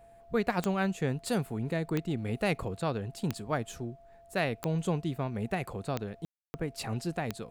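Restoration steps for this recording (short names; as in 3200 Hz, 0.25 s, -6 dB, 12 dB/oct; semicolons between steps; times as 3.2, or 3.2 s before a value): de-click; notch 680 Hz, Q 30; room tone fill 6.25–6.54; expander -48 dBFS, range -21 dB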